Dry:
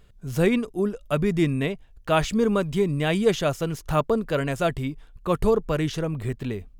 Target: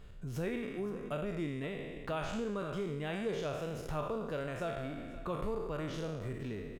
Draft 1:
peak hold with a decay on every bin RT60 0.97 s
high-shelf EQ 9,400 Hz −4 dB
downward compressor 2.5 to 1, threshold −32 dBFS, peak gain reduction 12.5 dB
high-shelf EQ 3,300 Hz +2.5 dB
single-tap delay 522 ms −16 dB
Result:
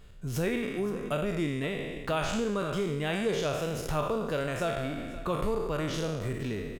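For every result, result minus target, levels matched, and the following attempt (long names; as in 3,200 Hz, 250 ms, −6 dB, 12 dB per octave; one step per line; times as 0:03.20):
downward compressor: peak gain reduction −6.5 dB; 8,000 Hz band +5.5 dB
peak hold with a decay on every bin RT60 0.97 s
high-shelf EQ 9,400 Hz −4 dB
downward compressor 2.5 to 1, threshold −43 dBFS, peak gain reduction 19 dB
high-shelf EQ 3,300 Hz +2.5 dB
single-tap delay 522 ms −16 dB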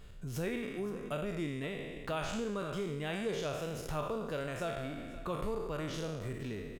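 8,000 Hz band +5.5 dB
peak hold with a decay on every bin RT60 0.97 s
high-shelf EQ 9,400 Hz −4 dB
downward compressor 2.5 to 1, threshold −43 dBFS, peak gain reduction 19 dB
high-shelf EQ 3,300 Hz −4.5 dB
single-tap delay 522 ms −16 dB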